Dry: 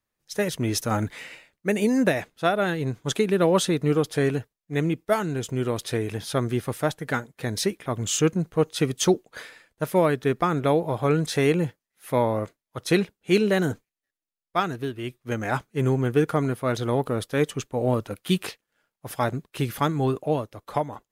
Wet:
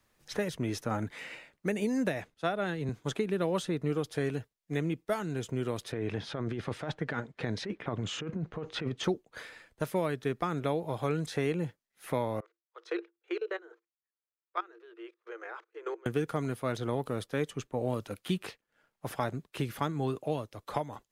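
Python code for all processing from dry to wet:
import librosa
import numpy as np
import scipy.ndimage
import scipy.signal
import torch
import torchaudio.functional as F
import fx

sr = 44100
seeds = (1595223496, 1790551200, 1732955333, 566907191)

y = fx.chain(x, sr, fx.lowpass(hz=11000.0, slope=12),
    fx.band_widen(depth_pct=40), at=(2.34, 2.89))
y = fx.chain(y, sr, fx.lowpass(hz=4000.0, slope=12),
    fx.over_compress(threshold_db=-29.0, ratio=-1.0), at=(5.92, 9.04))
y = fx.chain(y, sr, fx.level_steps(step_db=21),
    fx.cheby_ripple_highpass(hz=330.0, ripple_db=9),
    fx.air_absorb(metres=140.0), at=(12.4, 16.06))
y = fx.high_shelf(y, sr, hz=11000.0, db=-6.5)
y = fx.band_squash(y, sr, depth_pct=70)
y = y * 10.0 ** (-8.5 / 20.0)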